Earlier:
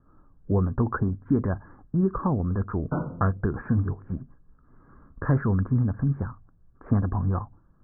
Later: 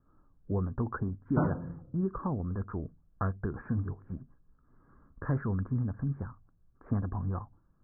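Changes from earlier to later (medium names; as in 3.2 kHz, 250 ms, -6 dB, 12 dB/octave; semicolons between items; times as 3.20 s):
speech -8.0 dB; background: entry -1.55 s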